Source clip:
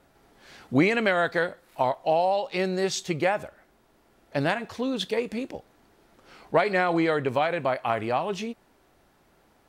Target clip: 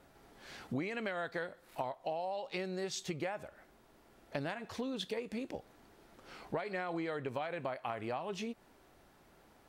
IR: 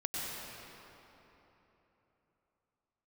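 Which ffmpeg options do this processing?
-af "acompressor=threshold=-35dB:ratio=5,volume=-1.5dB"

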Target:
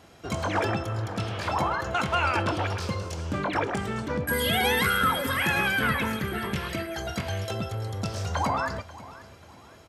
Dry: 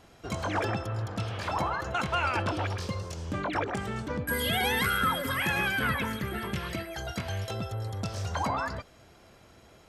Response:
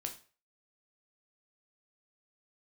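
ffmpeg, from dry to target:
-filter_complex "[0:a]highpass=60,aecho=1:1:538|1076|1614:0.126|0.0453|0.0163,asplit=2[a][b];[1:a]atrim=start_sample=2205[c];[b][c]afir=irnorm=-1:irlink=0,volume=-4.5dB[d];[a][d]amix=inputs=2:normalize=0"

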